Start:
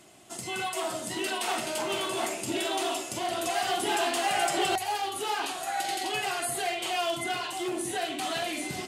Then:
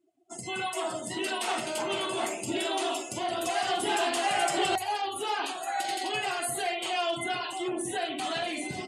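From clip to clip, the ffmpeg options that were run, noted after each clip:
-af "afftdn=nr=33:nf=-43"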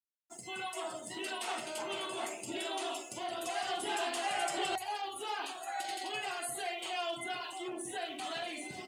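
-af "aeval=exprs='sgn(val(0))*max(abs(val(0))-0.00133,0)':c=same,lowshelf=f=250:g=-7,volume=0.473"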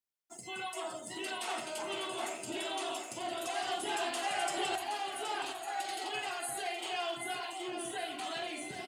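-af "aecho=1:1:771|1542|2313|3084|3855:0.355|0.145|0.0596|0.0245|0.01"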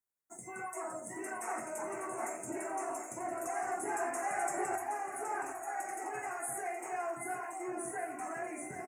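-filter_complex "[0:a]asuperstop=centerf=3700:order=8:qfactor=0.89,asplit=2[s0][s1];[s1]adelay=22,volume=0.266[s2];[s0][s2]amix=inputs=2:normalize=0"

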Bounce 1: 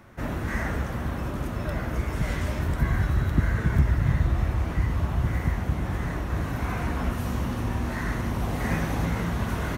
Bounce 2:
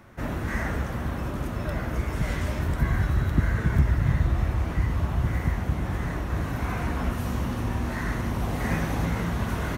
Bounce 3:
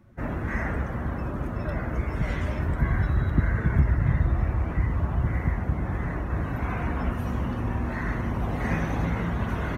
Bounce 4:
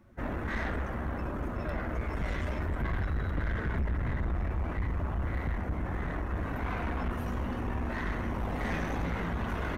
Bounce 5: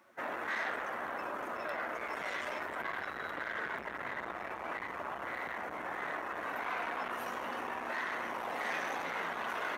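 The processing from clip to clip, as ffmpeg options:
-af anull
-af "afftdn=nr=14:nf=-44"
-af "equalizer=f=130:w=1.6:g=-8,aeval=exprs='(tanh(22.4*val(0)+0.35)-tanh(0.35))/22.4':c=same"
-filter_complex "[0:a]highpass=640,asplit=2[s0][s1];[s1]alimiter=level_in=3.98:limit=0.0631:level=0:latency=1,volume=0.251,volume=1.41[s2];[s0][s2]amix=inputs=2:normalize=0,volume=0.75"

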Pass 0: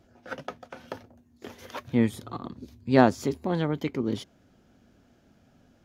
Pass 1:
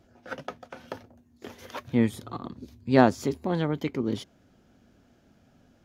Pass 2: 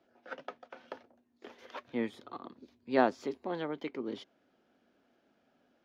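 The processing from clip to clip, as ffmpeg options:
-af anull
-filter_complex "[0:a]acrossover=split=250 4900:gain=0.0794 1 0.126[s0][s1][s2];[s0][s1][s2]amix=inputs=3:normalize=0,volume=0.501"

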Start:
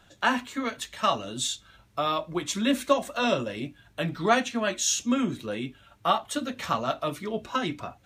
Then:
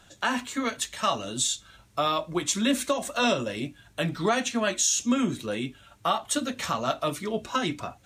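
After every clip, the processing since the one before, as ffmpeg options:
-af "equalizer=f=8000:w=0.8:g=7,alimiter=limit=0.168:level=0:latency=1:release=136,volume=1.19"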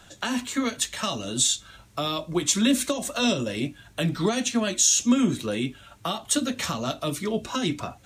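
-filter_complex "[0:a]acrossover=split=430|3000[s0][s1][s2];[s1]acompressor=threshold=0.0158:ratio=6[s3];[s0][s3][s2]amix=inputs=3:normalize=0,volume=1.68"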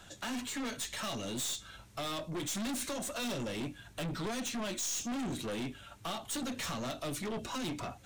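-af "aeval=exprs='(tanh(39.8*val(0)+0.2)-tanh(0.2))/39.8':c=same,volume=0.75"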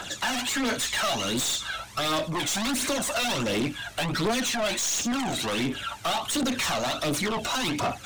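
-filter_complex "[0:a]aphaser=in_gain=1:out_gain=1:delay=1.6:decay=0.55:speed=1.4:type=triangular,asplit=2[s0][s1];[s1]highpass=f=720:p=1,volume=8.91,asoftclip=type=tanh:threshold=0.0531[s2];[s0][s2]amix=inputs=2:normalize=0,lowpass=f=6400:p=1,volume=0.501,volume=1.88"

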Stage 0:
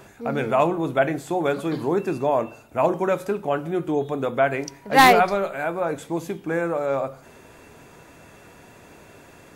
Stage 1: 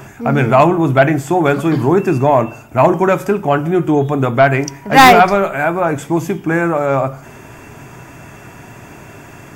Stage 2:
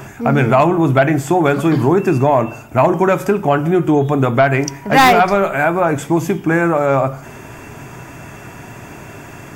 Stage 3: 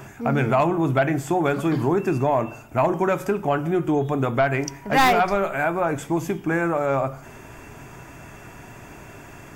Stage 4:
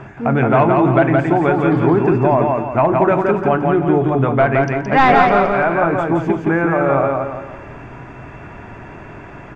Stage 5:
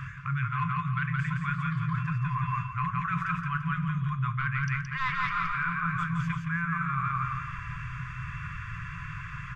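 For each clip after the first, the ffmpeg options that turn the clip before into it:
-af "equalizer=f=125:t=o:w=0.33:g=9,equalizer=f=500:t=o:w=0.33:g=-9,equalizer=f=4000:t=o:w=0.33:g=-12,equalizer=f=10000:t=o:w=0.33:g=-7,aeval=exprs='0.562*sin(PI/2*1.58*val(0)/0.562)':c=same,volume=1.58"
-af "acompressor=threshold=0.251:ratio=2.5,volume=1.26"
-af "asubboost=boost=2:cutoff=67,volume=0.422"
-af "lowpass=2300,aecho=1:1:170|340|510|680|850:0.708|0.29|0.119|0.0488|0.02,volume=1.88"
-af "afftfilt=real='re*(1-between(b*sr/4096,180,1000))':imag='im*(1-between(b*sr/4096,180,1000))':win_size=4096:overlap=0.75,areverse,acompressor=threshold=0.0501:ratio=12,areverse"

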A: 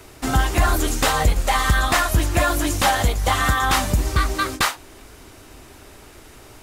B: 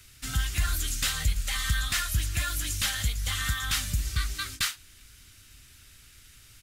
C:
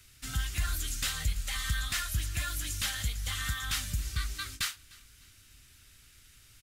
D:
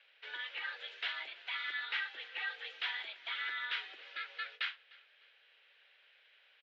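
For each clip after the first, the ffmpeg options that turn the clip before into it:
-af "firequalizer=gain_entry='entry(110,0);entry(350,-18);entry(870,-20);entry(1400,-3);entry(3200,4)':delay=0.05:min_phase=1,volume=0.376"
-af "aecho=1:1:302|604:0.0668|0.0234,volume=0.596"
-af "highpass=f=370:t=q:w=0.5412,highpass=f=370:t=q:w=1.307,lowpass=f=3200:t=q:w=0.5176,lowpass=f=3200:t=q:w=0.7071,lowpass=f=3200:t=q:w=1.932,afreqshift=170"

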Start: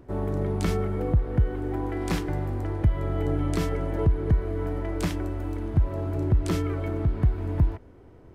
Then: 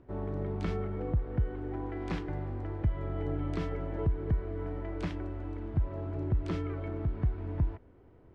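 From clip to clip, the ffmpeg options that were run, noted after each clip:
-af "lowpass=3500,volume=0.422"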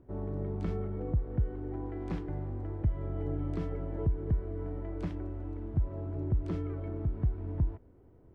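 -af "equalizer=f=3200:w=0.3:g=-9.5"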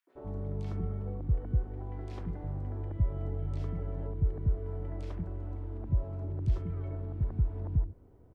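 -filter_complex "[0:a]acrossover=split=160|3000[s0][s1][s2];[s1]acompressor=threshold=0.01:ratio=6[s3];[s0][s3][s2]amix=inputs=3:normalize=0,acrossover=split=330|1900[s4][s5][s6];[s5]adelay=70[s7];[s4]adelay=150[s8];[s8][s7][s6]amix=inputs=3:normalize=0,volume=1.19"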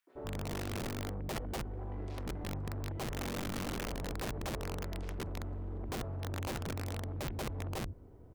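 -af "aeval=exprs='(mod(28.2*val(0)+1,2)-1)/28.2':c=same,aeval=exprs='0.0355*(cos(1*acos(clip(val(0)/0.0355,-1,1)))-cos(1*PI/2))+0.00794*(cos(5*acos(clip(val(0)/0.0355,-1,1)))-cos(5*PI/2))':c=same,volume=0.668"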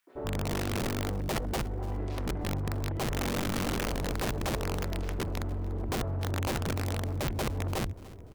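-af "aecho=1:1:292|584|876|1168:0.1|0.049|0.024|0.0118,volume=2.24"

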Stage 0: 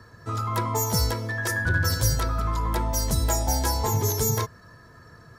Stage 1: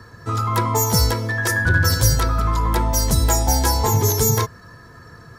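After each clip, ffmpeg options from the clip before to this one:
-af "bandreject=f=620:w=12,volume=2.11"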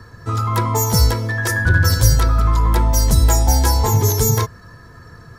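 -af "lowshelf=f=81:g=8.5"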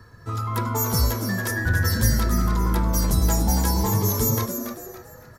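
-filter_complex "[0:a]aexciter=amount=2.3:drive=1.4:freq=11000,asplit=2[s0][s1];[s1]asplit=4[s2][s3][s4][s5];[s2]adelay=282,afreqshift=130,volume=0.398[s6];[s3]adelay=564,afreqshift=260,volume=0.14[s7];[s4]adelay=846,afreqshift=390,volume=0.049[s8];[s5]adelay=1128,afreqshift=520,volume=0.017[s9];[s6][s7][s8][s9]amix=inputs=4:normalize=0[s10];[s0][s10]amix=inputs=2:normalize=0,volume=0.422"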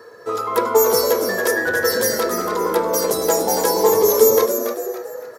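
-filter_complex "[0:a]asplit=2[s0][s1];[s1]asoftclip=type=tanh:threshold=0.178,volume=0.562[s2];[s0][s2]amix=inputs=2:normalize=0,highpass=f=460:t=q:w=5.4,volume=1.26"

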